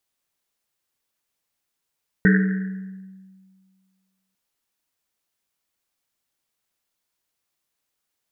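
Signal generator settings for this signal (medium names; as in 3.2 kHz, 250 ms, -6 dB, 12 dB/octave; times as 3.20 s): Risset drum length 2.10 s, pitch 190 Hz, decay 1.90 s, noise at 1.7 kHz, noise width 410 Hz, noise 25%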